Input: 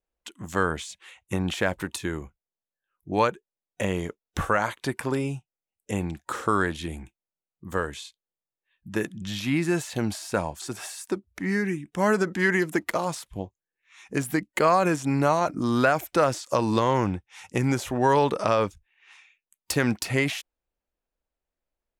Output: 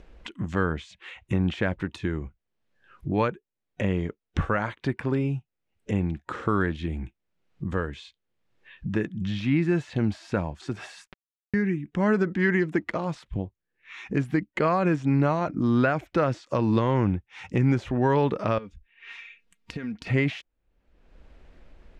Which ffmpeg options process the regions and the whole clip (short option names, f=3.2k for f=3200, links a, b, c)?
-filter_complex "[0:a]asettb=1/sr,asplit=3[a][b][c];[a]atrim=end=11.074[d];[b]atrim=start=11.07:end=11.54,asetpts=PTS-STARTPTS,afade=t=in:d=0.004:c=qsin,afade=t=out:st=0.466:d=0.004:c=qsin,aeval=exprs='val(0)+0.5*0.0119*sgn(val(0))':c=same,highpass=500,lowpass=2.4k,acrusher=bits=2:mix=0:aa=0.5[e];[c]atrim=start=11.536[f];[d][e]acrossfade=d=0.004:c1=hsin:c2=qsin[g];[g][f]acrossfade=d=0.004:c1=qsin:c2=hsin,asettb=1/sr,asplit=3[h][i][j];[h]atrim=end=18.584[k];[i]atrim=start=18.58:end=20.07,asetpts=PTS-STARTPTS,afade=t=in:d=0.004:c=qsin,afade=t=out:st=1.486:d=0.004:c=qsin,equalizer=f=840:w=1:g=-5.5,aecho=1:1:4.3:0.59,atrim=end_sample=65709,acompressor=threshold=-37dB:ratio=8:attack=3.2:release=140:knee=1:detection=peak[l];[j]atrim=start=20.066[m];[k][l]acrossfade=d=0.004:c1=hsin:c2=qsin[n];[n][m]acrossfade=d=0.004:c1=qsin:c2=hsin,acompressor=mode=upward:threshold=-26dB:ratio=2.5,lowpass=2.1k,equalizer=f=860:w=0.52:g=-10,volume=5dB"